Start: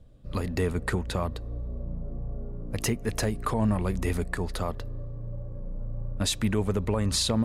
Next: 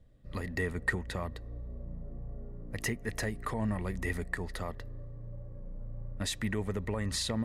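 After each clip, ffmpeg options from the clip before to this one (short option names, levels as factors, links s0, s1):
-af "equalizer=f=1900:t=o:w=0.21:g=14,volume=0.422"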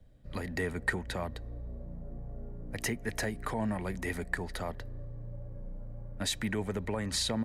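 -filter_complex "[0:a]acrossover=split=170|480|5500[s0][s1][s2][s3];[s0]alimiter=level_in=4.73:limit=0.0631:level=0:latency=1:release=121,volume=0.211[s4];[s2]aecho=1:1:1.3:0.36[s5];[s4][s1][s5][s3]amix=inputs=4:normalize=0,volume=1.26"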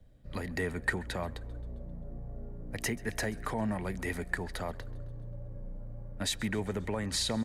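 -filter_complex "[0:a]asplit=6[s0][s1][s2][s3][s4][s5];[s1]adelay=133,afreqshift=-72,volume=0.0794[s6];[s2]adelay=266,afreqshift=-144,volume=0.0484[s7];[s3]adelay=399,afreqshift=-216,volume=0.0295[s8];[s4]adelay=532,afreqshift=-288,volume=0.018[s9];[s5]adelay=665,afreqshift=-360,volume=0.011[s10];[s0][s6][s7][s8][s9][s10]amix=inputs=6:normalize=0"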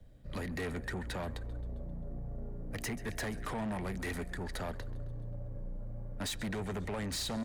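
-filter_complex "[0:a]acrossover=split=410[s0][s1];[s1]alimiter=level_in=1.12:limit=0.0631:level=0:latency=1:release=161,volume=0.891[s2];[s0][s2]amix=inputs=2:normalize=0,asoftclip=type=tanh:threshold=0.0168,volume=1.33"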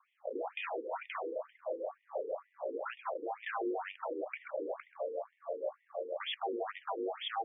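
-af "aeval=exprs='val(0)*sin(2*PI*570*n/s)':c=same,afftfilt=real='re*between(b*sr/1024,350*pow(2600/350,0.5+0.5*sin(2*PI*2.1*pts/sr))/1.41,350*pow(2600/350,0.5+0.5*sin(2*PI*2.1*pts/sr))*1.41)':imag='im*between(b*sr/1024,350*pow(2600/350,0.5+0.5*sin(2*PI*2.1*pts/sr))/1.41,350*pow(2600/350,0.5+0.5*sin(2*PI*2.1*pts/sr))*1.41)':win_size=1024:overlap=0.75,volume=2.51"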